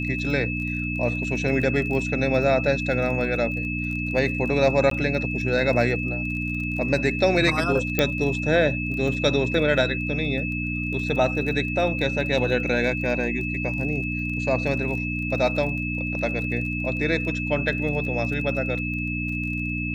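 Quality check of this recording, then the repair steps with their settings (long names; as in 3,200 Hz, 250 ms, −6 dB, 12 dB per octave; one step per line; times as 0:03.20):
surface crackle 24 per second −32 dBFS
mains hum 60 Hz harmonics 5 −29 dBFS
whistle 2,600 Hz −29 dBFS
0:04.90–0:04.91: drop-out 13 ms
0:07.99: click −6 dBFS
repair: click removal
hum removal 60 Hz, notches 5
notch filter 2,600 Hz, Q 30
repair the gap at 0:04.90, 13 ms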